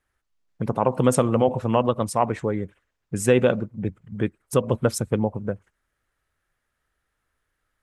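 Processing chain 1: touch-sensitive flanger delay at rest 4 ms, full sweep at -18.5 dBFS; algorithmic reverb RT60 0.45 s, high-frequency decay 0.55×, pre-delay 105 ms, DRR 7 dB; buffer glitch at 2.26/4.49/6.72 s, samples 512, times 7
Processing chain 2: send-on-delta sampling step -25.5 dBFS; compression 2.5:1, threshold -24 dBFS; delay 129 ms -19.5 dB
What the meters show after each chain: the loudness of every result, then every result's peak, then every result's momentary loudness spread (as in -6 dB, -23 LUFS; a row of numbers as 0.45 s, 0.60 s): -24.0 LUFS, -29.0 LUFS; -5.5 dBFS, -10.5 dBFS; 14 LU, 8 LU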